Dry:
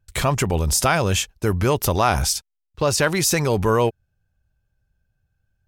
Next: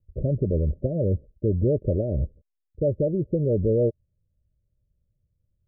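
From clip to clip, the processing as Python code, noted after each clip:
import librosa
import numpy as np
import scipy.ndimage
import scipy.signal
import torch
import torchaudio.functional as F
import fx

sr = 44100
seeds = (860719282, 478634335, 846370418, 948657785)

y = scipy.signal.sosfilt(scipy.signal.cheby1(8, 1.0, 610.0, 'lowpass', fs=sr, output='sos'), x)
y = y * librosa.db_to_amplitude(-1.5)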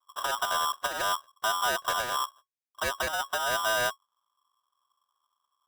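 y = fx.lower_of_two(x, sr, delay_ms=2.2)
y = y * np.sign(np.sin(2.0 * np.pi * 1100.0 * np.arange(len(y)) / sr))
y = y * librosa.db_to_amplitude(-5.5)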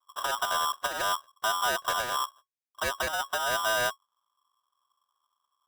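y = x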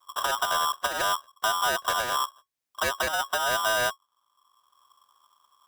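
y = fx.band_squash(x, sr, depth_pct=40)
y = y * librosa.db_to_amplitude(2.5)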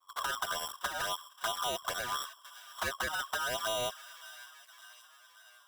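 y = fx.echo_wet_highpass(x, sr, ms=567, feedback_pct=59, hz=1600.0, wet_db=-14)
y = fx.env_flanger(y, sr, rest_ms=11.5, full_db=-21.0)
y = y * librosa.db_to_amplitude(-4.5)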